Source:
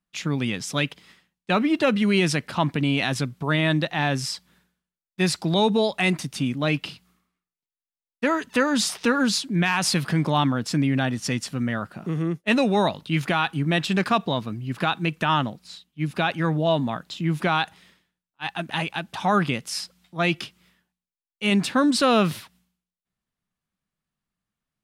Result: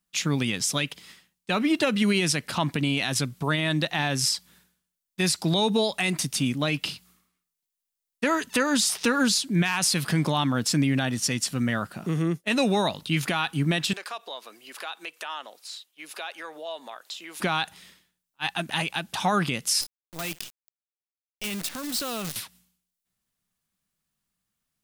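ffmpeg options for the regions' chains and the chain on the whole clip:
-filter_complex "[0:a]asettb=1/sr,asplit=3[a][b][c];[a]atrim=end=13.934[d];[b]atrim=start=13.93:end=17.4,asetpts=PTS-STARTPTS,afade=t=in:d=0.004:c=qsin,afade=t=out:st=3.466:d=0.004:c=qsin,highpass=f=450:w=0.5412,highpass=f=450:w=1.3066,acompressor=threshold=-44dB:ratio=2:attack=3.2:release=140:knee=1:detection=peak[e];[c]atrim=start=17.396[f];[d][e]acrossfade=d=0.004:c1=hsin:c2=qsin[g];[g][f]acrossfade=d=0.004:c1=qsin:c2=hsin,asettb=1/sr,asplit=3[h][i][j];[h]atrim=end=19.814[k];[i]atrim=start=19.81:end=22.36,asetpts=PTS-STARTPTS,afade=t=in:d=0.004:c=qsin,afade=t=out:st=2.546:d=0.004:c=qsin,lowpass=10k,acrusher=bits=5:dc=4:mix=0:aa=0.000001,acompressor=threshold=-33dB:ratio=4:attack=3.2:release=140:knee=1:detection=peak[l];[j]atrim=start=22.356[m];[k][l]acrossfade=d=0.004:c1=hsin:c2=qsin[n];[n][m]acrossfade=d=0.004:c1=qsin:c2=hsin,highshelf=f=4.1k:g=12,alimiter=limit=-13.5dB:level=0:latency=1:release=152"

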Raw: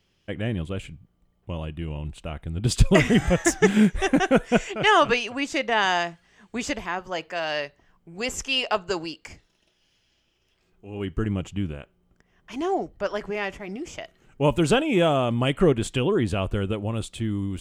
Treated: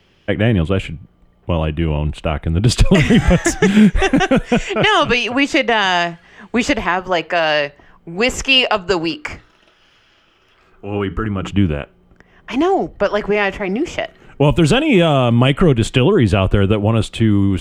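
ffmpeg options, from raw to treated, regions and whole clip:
-filter_complex "[0:a]asettb=1/sr,asplit=3[a][b][c];[a]atrim=end=9.104[d];[b]atrim=start=9.1:end=11.51,asetpts=PTS-STARTPTS,afade=t=in:d=0.004:c=qsin,afade=t=out:st=2.406:d=0.004:c=qsin,equalizer=f=1.3k:t=o:w=0.59:g=9.5,bandreject=f=60:t=h:w=6,bandreject=f=120:t=h:w=6,bandreject=f=180:t=h:w=6,bandreject=f=240:t=h:w=6,bandreject=f=300:t=h:w=6,bandreject=f=360:t=h:w=6,bandreject=f=420:t=h:w=6,acompressor=threshold=-29dB:ratio=10:attack=3.2:release=140:knee=1:detection=peak[e];[c]atrim=start=11.506[f];[d][e]acrossfade=d=0.004:c1=hsin:c2=qsin[g];[g][f]acrossfade=d=0.004:c1=qsin:c2=hsin,bass=f=250:g=-3,treble=f=4k:g=-11,acrossover=split=190|3000[h][i][j];[i]acompressor=threshold=-29dB:ratio=4[k];[h][k][j]amix=inputs=3:normalize=0,alimiter=level_in=17dB:limit=-1dB:release=50:level=0:latency=1,volume=-1dB"

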